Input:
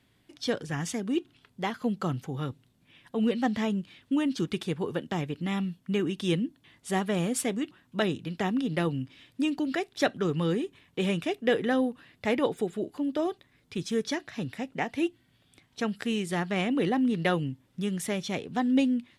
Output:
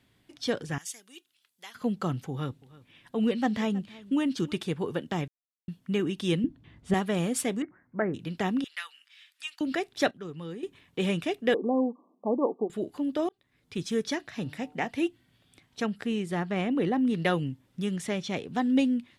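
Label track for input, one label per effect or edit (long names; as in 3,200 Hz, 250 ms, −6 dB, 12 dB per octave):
0.780000	1.750000	first difference
2.300000	4.580000	single-tap delay 318 ms −20.5 dB
5.280000	5.680000	silence
6.440000	6.940000	RIAA equalisation playback
7.620000	8.140000	Chebyshev low-pass with heavy ripple 2,200 Hz, ripple 3 dB
8.640000	9.610000	high-pass filter 1,400 Hz 24 dB per octave
10.110000	10.630000	clip gain −11.5 dB
11.540000	12.700000	linear-phase brick-wall band-pass 190–1,200 Hz
13.290000	13.780000	fade in linear
14.350000	14.880000	hum removal 149.5 Hz, notches 9
15.860000	17.070000	high-shelf EQ 2,300 Hz −8 dB
17.960000	18.370000	Bessel low-pass filter 7,100 Hz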